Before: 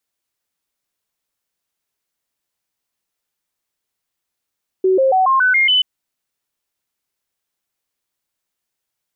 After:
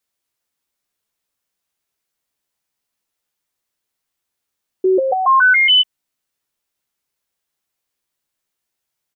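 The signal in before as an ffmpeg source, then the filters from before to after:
-f lavfi -i "aevalsrc='0.299*clip(min(mod(t,0.14),0.14-mod(t,0.14))/0.005,0,1)*sin(2*PI*376*pow(2,floor(t/0.14)/2)*mod(t,0.14))':duration=0.98:sample_rate=44100"
-filter_complex "[0:a]asplit=2[link_01][link_02];[link_02]adelay=14,volume=-7dB[link_03];[link_01][link_03]amix=inputs=2:normalize=0"

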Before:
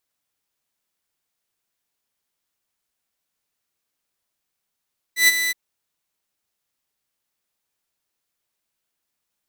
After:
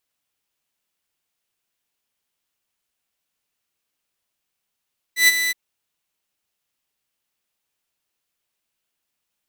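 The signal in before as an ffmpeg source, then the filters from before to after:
-f lavfi -i "aevalsrc='0.422*(2*mod(1990*t,1)-1)':duration=0.371:sample_rate=44100,afade=type=in:duration=0.119,afade=type=out:start_time=0.119:duration=0.029:silence=0.316,afade=type=out:start_time=0.35:duration=0.021"
-af "equalizer=frequency=2800:width=2.7:gain=4"

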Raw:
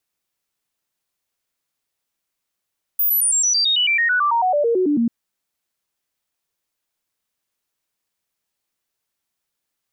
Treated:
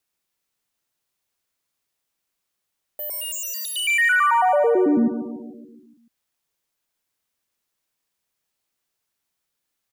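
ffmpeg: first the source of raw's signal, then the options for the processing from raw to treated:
-f lavfi -i "aevalsrc='0.188*clip(min(mod(t,0.11),0.11-mod(t,0.11))/0.005,0,1)*sin(2*PI*14900*pow(2,-floor(t/0.11)/3)*mod(t,0.11))':duration=2.09:sample_rate=44100"
-filter_complex "[0:a]acrossover=split=2500[link_01][link_02];[link_02]aeval=exprs='0.0531*(abs(mod(val(0)/0.0531+3,4)-2)-1)':channel_layout=same[link_03];[link_01][link_03]amix=inputs=2:normalize=0,aecho=1:1:143|286|429|572|715|858|1001:0.299|0.17|0.097|0.0553|0.0315|0.018|0.0102"

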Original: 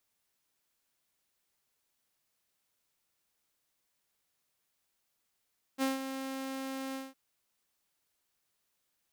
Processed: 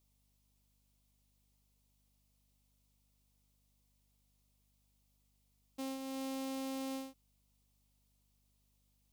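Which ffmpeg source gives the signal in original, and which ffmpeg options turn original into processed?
-f lavfi -i "aevalsrc='0.0596*(2*mod(267*t,1)-1)':duration=1.359:sample_rate=44100,afade=type=in:duration=0.044,afade=type=out:start_time=0.044:duration=0.159:silence=0.335,afade=type=out:start_time=1.17:duration=0.189"
-af "equalizer=frequency=1600:width=2:gain=-12.5,alimiter=level_in=11dB:limit=-24dB:level=0:latency=1:release=419,volume=-11dB,aeval=exprs='val(0)+0.000178*(sin(2*PI*50*n/s)+sin(2*PI*2*50*n/s)/2+sin(2*PI*3*50*n/s)/3+sin(2*PI*4*50*n/s)/4+sin(2*PI*5*50*n/s)/5)':channel_layout=same"

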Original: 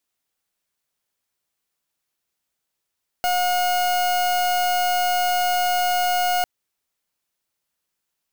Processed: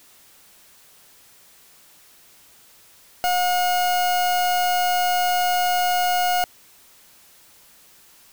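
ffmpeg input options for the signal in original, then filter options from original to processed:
-f lavfi -i "aevalsrc='0.0944*(2*lt(mod(720*t,1),0.39)-1)':duration=3.2:sample_rate=44100"
-af "aeval=exprs='val(0)+0.5*0.00531*sgn(val(0))':channel_layout=same"

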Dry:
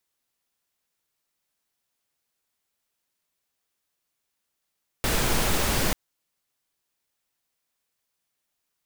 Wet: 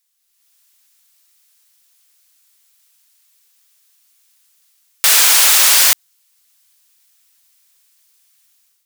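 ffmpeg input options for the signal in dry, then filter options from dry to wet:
-f lavfi -i "anoisesrc=color=pink:amplitude=0.343:duration=0.89:sample_rate=44100:seed=1"
-af "highpass=970,highshelf=frequency=2700:gain=12,dynaudnorm=framelen=160:gausssize=5:maxgain=11.5dB"

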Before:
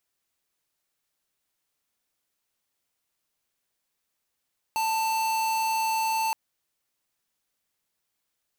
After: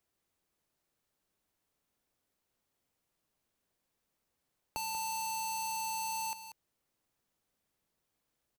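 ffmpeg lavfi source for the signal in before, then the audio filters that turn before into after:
-f lavfi -i "aevalsrc='0.0501*(2*lt(mod(889*t,1),0.5)-1)':duration=1.57:sample_rate=44100"
-filter_complex "[0:a]tiltshelf=frequency=970:gain=5.5,acrossover=split=170|3000[link_01][link_02][link_03];[link_02]acompressor=threshold=-42dB:ratio=6[link_04];[link_01][link_04][link_03]amix=inputs=3:normalize=0,asplit=2[link_05][link_06];[link_06]aecho=0:1:188:0.282[link_07];[link_05][link_07]amix=inputs=2:normalize=0"

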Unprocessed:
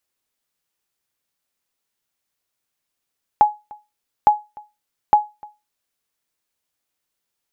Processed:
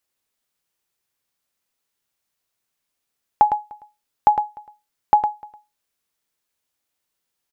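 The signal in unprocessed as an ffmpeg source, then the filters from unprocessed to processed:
-f lavfi -i "aevalsrc='0.631*(sin(2*PI*840*mod(t,0.86))*exp(-6.91*mod(t,0.86)/0.24)+0.0531*sin(2*PI*840*max(mod(t,0.86)-0.3,0))*exp(-6.91*max(mod(t,0.86)-0.3,0)/0.24))':duration=2.58:sample_rate=44100"
-af "aecho=1:1:108:0.422"

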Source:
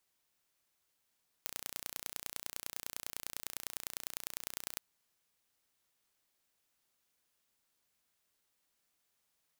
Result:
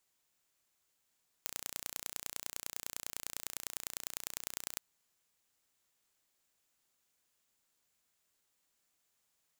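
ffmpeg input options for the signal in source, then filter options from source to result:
-f lavfi -i "aevalsrc='0.316*eq(mod(n,1475),0)*(0.5+0.5*eq(mod(n,4425),0))':duration=3.34:sample_rate=44100"
-af "equalizer=frequency=7200:width=4.6:gain=5.5"

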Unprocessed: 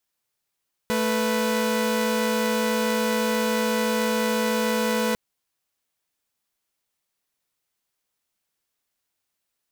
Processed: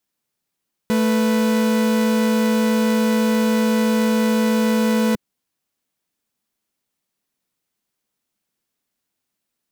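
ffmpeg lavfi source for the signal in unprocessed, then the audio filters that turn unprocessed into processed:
-f lavfi -i "aevalsrc='0.0841*((2*mod(220*t,1)-1)+(2*mod(493.88*t,1)-1))':duration=4.25:sample_rate=44100"
-af "equalizer=frequency=220:width_type=o:width=1.5:gain=9.5"

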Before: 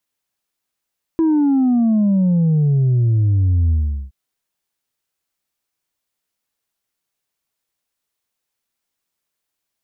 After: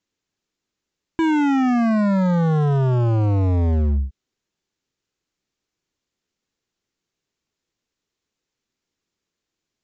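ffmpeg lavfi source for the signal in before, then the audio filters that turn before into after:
-f lavfi -i "aevalsrc='0.237*clip((2.92-t)/0.4,0,1)*tanh(1.26*sin(2*PI*330*2.92/log(65/330)*(exp(log(65/330)*t/2.92)-1)))/tanh(1.26)':duration=2.92:sample_rate=44100"
-af "lowshelf=frequency=510:width_type=q:width=1.5:gain=6.5,aresample=16000,asoftclip=type=hard:threshold=-17dB,aresample=44100"

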